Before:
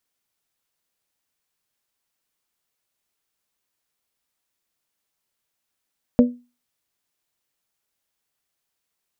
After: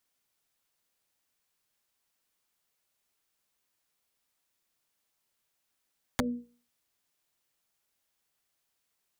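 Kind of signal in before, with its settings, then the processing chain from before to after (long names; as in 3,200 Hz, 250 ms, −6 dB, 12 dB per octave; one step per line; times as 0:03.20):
struck glass bell, lowest mode 244 Hz, modes 3, decay 0.30 s, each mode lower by 6 dB, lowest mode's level −7 dB
mains-hum notches 60/120/180/240/300/360/420/480 Hz
downward compressor 8 to 1, threshold −24 dBFS
wrap-around overflow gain 19 dB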